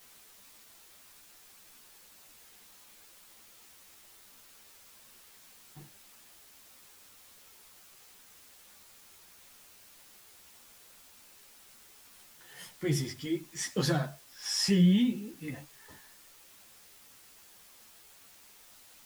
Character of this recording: tremolo triangle 1.1 Hz, depth 40%; a quantiser's noise floor 10-bit, dither triangular; a shimmering, thickened sound

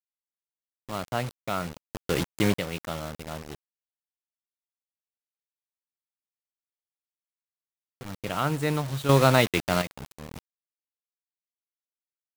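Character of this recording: a quantiser's noise floor 6-bit, dither none; chopped level 0.55 Hz, depth 65%, duty 40%

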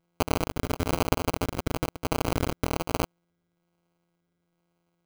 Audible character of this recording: a buzz of ramps at a fixed pitch in blocks of 256 samples; phasing stages 8, 1.1 Hz, lowest notch 800–4900 Hz; aliases and images of a low sample rate 1.8 kHz, jitter 0%

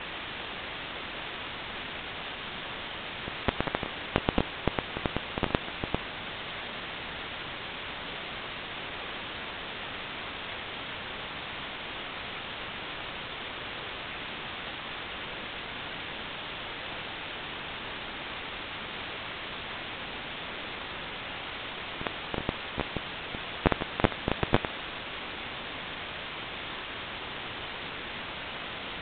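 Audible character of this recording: aliases and images of a low sample rate 2.8 kHz, jitter 0%; chopped level 7.8 Hz, depth 60%, duty 70%; a quantiser's noise floor 6-bit, dither triangular; IMA ADPCM

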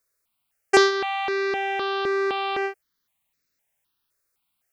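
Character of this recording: notches that jump at a steady rate 3.9 Hz 830–3100 Hz

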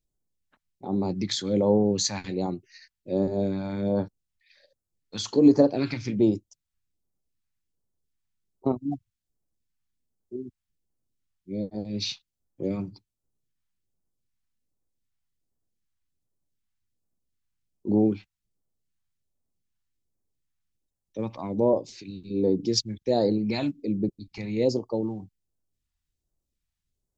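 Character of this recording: phasing stages 2, 1.3 Hz, lowest notch 420–2400 Hz

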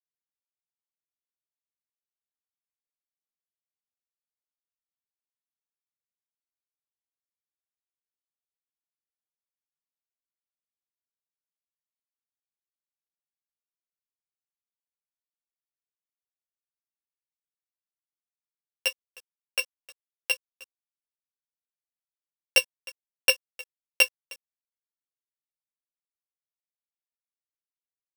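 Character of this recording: a buzz of ramps at a fixed pitch in blocks of 16 samples; chopped level 1.3 Hz, depth 60%, duty 60%; a quantiser's noise floor 8-bit, dither none; a shimmering, thickened sound

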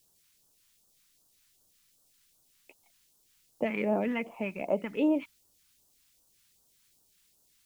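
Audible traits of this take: a quantiser's noise floor 12-bit, dither triangular; phasing stages 2, 2.6 Hz, lowest notch 540–2100 Hz

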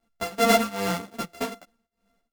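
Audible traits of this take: a buzz of ramps at a fixed pitch in blocks of 64 samples; tremolo triangle 2.5 Hz, depth 95%; a shimmering, thickened sound

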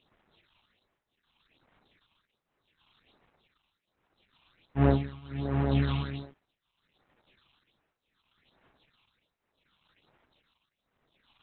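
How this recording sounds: a quantiser's noise floor 10-bit, dither triangular; tremolo triangle 0.72 Hz, depth 95%; phasing stages 6, 1.3 Hz, lowest notch 460–4100 Hz; Opus

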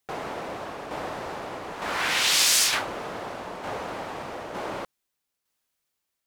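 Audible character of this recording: tremolo saw down 1.1 Hz, depth 50%

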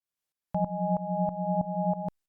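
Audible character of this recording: tremolo saw up 3.1 Hz, depth 85%; Opus

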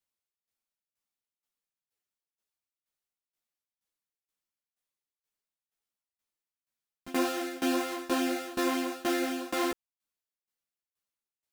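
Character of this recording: tremolo saw down 2.1 Hz, depth 95%; a shimmering, thickened sound

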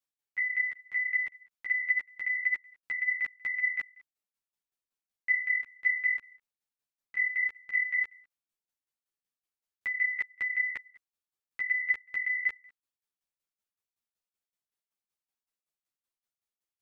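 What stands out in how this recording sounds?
tremolo saw down 5.3 Hz, depth 90%; a shimmering, thickened sound

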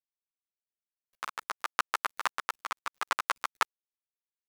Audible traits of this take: a quantiser's noise floor 8-bit, dither none; tremolo triangle 0.63 Hz, depth 50%; a shimmering, thickened sound

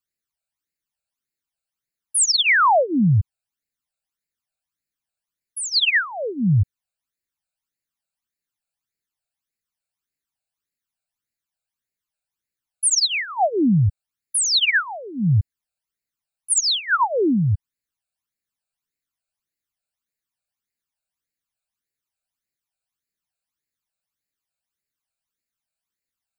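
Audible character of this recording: phasing stages 12, 1.7 Hz, lowest notch 320–1100 Hz

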